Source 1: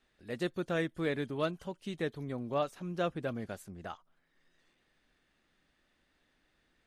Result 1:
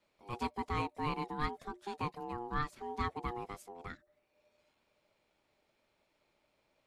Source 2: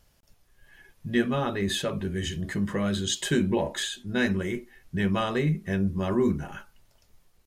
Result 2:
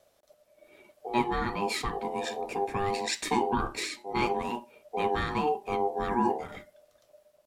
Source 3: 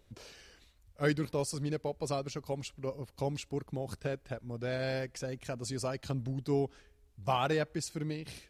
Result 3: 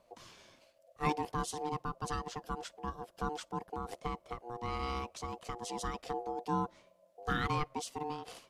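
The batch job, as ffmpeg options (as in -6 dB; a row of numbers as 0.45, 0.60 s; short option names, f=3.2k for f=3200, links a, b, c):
-af "aeval=exprs='val(0)*sin(2*PI*960*n/s)':c=same,afreqshift=-360"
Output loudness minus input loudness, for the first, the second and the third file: -3.0, -3.0, -3.0 LU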